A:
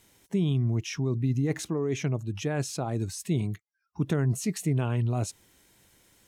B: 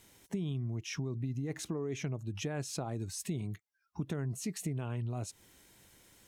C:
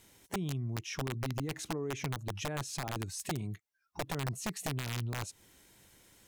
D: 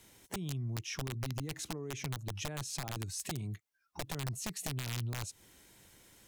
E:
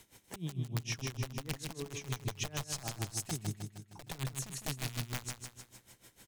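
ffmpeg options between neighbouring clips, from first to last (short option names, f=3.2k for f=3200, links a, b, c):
-af "acompressor=threshold=-34dB:ratio=5"
-af "aeval=exprs='(mod(26.6*val(0)+1,2)-1)/26.6':c=same"
-filter_complex "[0:a]acrossover=split=130|3000[a][b][c];[b]acompressor=threshold=-46dB:ratio=2[d];[a][d][c]amix=inputs=3:normalize=0,volume=1dB"
-af "aecho=1:1:155|310|465|620|775|930:0.531|0.26|0.127|0.0625|0.0306|0.015,aeval=exprs='val(0)*pow(10,-18*(0.5-0.5*cos(2*PI*6.6*n/s))/20)':c=same,volume=4dB"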